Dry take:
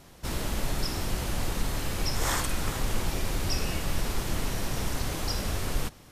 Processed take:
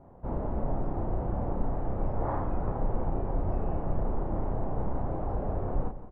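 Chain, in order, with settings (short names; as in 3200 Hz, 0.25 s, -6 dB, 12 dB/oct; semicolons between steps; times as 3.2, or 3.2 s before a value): ladder low-pass 970 Hz, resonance 35%; doubler 33 ms -4.5 dB; feedback echo 0.171 s, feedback 41%, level -14 dB; gain +6 dB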